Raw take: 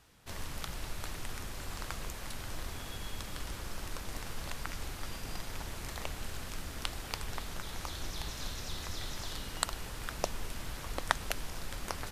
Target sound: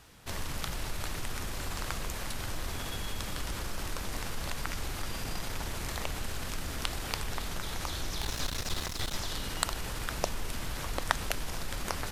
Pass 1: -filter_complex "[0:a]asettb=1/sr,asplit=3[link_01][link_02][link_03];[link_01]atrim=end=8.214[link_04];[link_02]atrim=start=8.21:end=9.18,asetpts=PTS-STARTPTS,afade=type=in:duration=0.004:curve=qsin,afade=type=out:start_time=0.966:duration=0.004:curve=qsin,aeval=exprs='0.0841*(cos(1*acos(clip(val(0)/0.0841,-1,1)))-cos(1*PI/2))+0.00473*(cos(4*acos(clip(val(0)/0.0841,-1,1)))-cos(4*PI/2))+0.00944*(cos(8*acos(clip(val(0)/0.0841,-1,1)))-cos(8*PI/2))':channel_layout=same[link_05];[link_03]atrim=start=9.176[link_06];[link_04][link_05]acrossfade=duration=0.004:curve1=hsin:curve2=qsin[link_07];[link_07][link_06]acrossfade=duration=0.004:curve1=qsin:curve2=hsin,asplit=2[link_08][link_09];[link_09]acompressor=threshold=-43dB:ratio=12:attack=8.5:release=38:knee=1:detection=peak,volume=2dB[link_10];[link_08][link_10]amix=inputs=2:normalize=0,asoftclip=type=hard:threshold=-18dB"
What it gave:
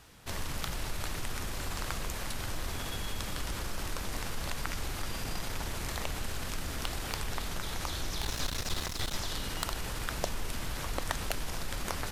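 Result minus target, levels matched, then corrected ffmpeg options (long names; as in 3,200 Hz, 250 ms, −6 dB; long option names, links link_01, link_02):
hard clipping: distortion +15 dB
-filter_complex "[0:a]asettb=1/sr,asplit=3[link_01][link_02][link_03];[link_01]atrim=end=8.214[link_04];[link_02]atrim=start=8.21:end=9.18,asetpts=PTS-STARTPTS,afade=type=in:duration=0.004:curve=qsin,afade=type=out:start_time=0.966:duration=0.004:curve=qsin,aeval=exprs='0.0841*(cos(1*acos(clip(val(0)/0.0841,-1,1)))-cos(1*PI/2))+0.00473*(cos(4*acos(clip(val(0)/0.0841,-1,1)))-cos(4*PI/2))+0.00944*(cos(8*acos(clip(val(0)/0.0841,-1,1)))-cos(8*PI/2))':channel_layout=same[link_05];[link_03]atrim=start=9.176[link_06];[link_04][link_05]acrossfade=duration=0.004:curve1=hsin:curve2=qsin[link_07];[link_07][link_06]acrossfade=duration=0.004:curve1=qsin:curve2=hsin,asplit=2[link_08][link_09];[link_09]acompressor=threshold=-43dB:ratio=12:attack=8.5:release=38:knee=1:detection=peak,volume=2dB[link_10];[link_08][link_10]amix=inputs=2:normalize=0,asoftclip=type=hard:threshold=-6.5dB"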